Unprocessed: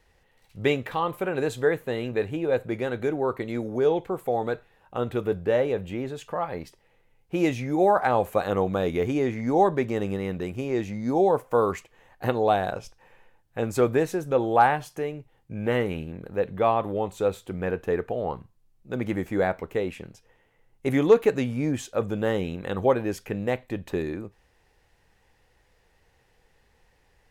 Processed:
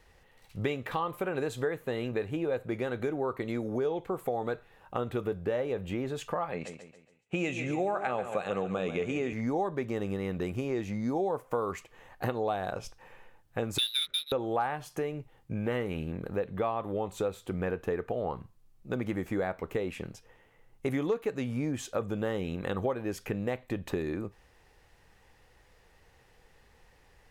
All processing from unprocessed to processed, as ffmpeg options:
-filter_complex "[0:a]asettb=1/sr,asplit=3[s0][s1][s2];[s0]atrim=end=6.514[s3];[s1]atrim=start=6.51:end=9.33,asetpts=PTS-STARTPTS,afade=t=in:d=0.004:c=qsin,afade=t=out:st=2.816:d=0.004:c=qsin,agate=range=0.0224:threshold=0.00178:ratio=3:release=100:detection=peak,highpass=140,equalizer=f=180:t=q:w=4:g=3,equalizer=f=320:t=q:w=4:g=-5,equalizer=f=950:t=q:w=4:g=-5,equalizer=f=2600:t=q:w=4:g=9,equalizer=f=5000:t=q:w=4:g=-9,equalizer=f=7300:t=q:w=4:g=7,lowpass=f=8900:w=0.5412,lowpass=f=8900:w=1.3066,aecho=1:1:139|278|417|556:0.266|0.109|0.0447|0.0183,atrim=end_sample=124362[s4];[s2]atrim=start=9.326[s5];[s3][s4]acrossfade=d=0.004:c1=hsin:c2=qsin[s6];[s6][s5]acrossfade=d=0.004:c1=qsin:c2=hsin,asettb=1/sr,asplit=3[s7][s8][s9];[s7]atrim=end=13.784[s10];[s8]atrim=start=13.78:end=14.32,asetpts=PTS-STARTPTS,afade=t=in:d=0.004:c=qsin,afade=t=out:st=0.536:d=0.004:c=qsin,lowpass=f=3400:t=q:w=0.5098,lowpass=f=3400:t=q:w=0.6013,lowpass=f=3400:t=q:w=0.9,lowpass=f=3400:t=q:w=2.563,afreqshift=-4000,asuperstop=centerf=900:order=12:qfactor=1.5,adynamicsmooth=sensitivity=7:basefreq=630[s11];[s9]atrim=start=14.316[s12];[s10][s11]acrossfade=d=0.004:c1=hsin:c2=qsin[s13];[s13][s12]acrossfade=d=0.004:c1=qsin:c2=hsin,equalizer=f=1200:w=6:g=3.5,acompressor=threshold=0.0251:ratio=4,volume=1.33"

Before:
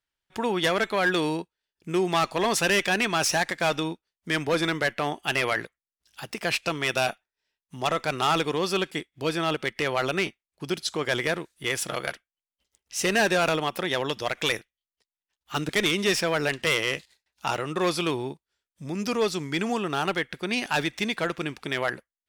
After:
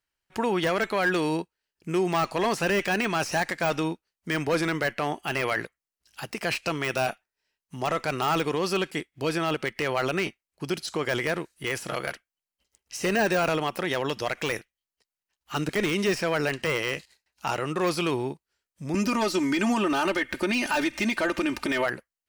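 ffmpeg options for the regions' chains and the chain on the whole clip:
-filter_complex "[0:a]asettb=1/sr,asplit=3[s0][s1][s2];[s0]atrim=end=18.944[s3];[s1]atrim=start=18.94:end=21.86,asetpts=PTS-STARTPTS,afade=t=in:d=0.004:c=qsin,afade=t=out:st=2.916:d=0.004:c=qsin,aecho=1:1:3.3:0.9,atrim=end_sample=128772,acompressor=threshold=0.02:ratio=2.5:attack=3.2:release=140:knee=1:detection=peak,aeval=exprs='0.158*sin(PI/2*1.78*val(0)/0.158)':c=same[s4];[s2]atrim=start=21.856[s5];[s3][s4]acrossfade=d=0.004:c1=hsin:c2=qsin[s6];[s6][s5]acrossfade=d=0.004:c1=qsin:c2=hsin,deesser=0.65,bandreject=f=3500:w=8.6,alimiter=limit=0.112:level=0:latency=1:release=20,volume=1.26"

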